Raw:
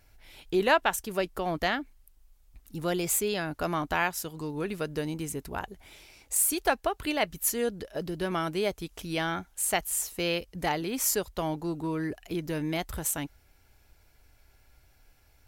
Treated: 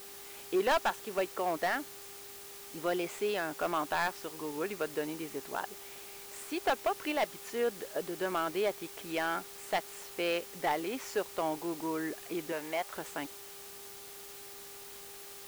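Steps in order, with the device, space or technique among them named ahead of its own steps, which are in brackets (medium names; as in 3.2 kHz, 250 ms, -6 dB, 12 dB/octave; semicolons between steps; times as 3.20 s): aircraft radio (band-pass 360–2600 Hz; hard clipper -23.5 dBFS, distortion -10 dB; mains buzz 400 Hz, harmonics 3, -56 dBFS -8 dB/octave; white noise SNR 13 dB); 12.52–12.96 s: resonant low shelf 430 Hz -7 dB, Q 1.5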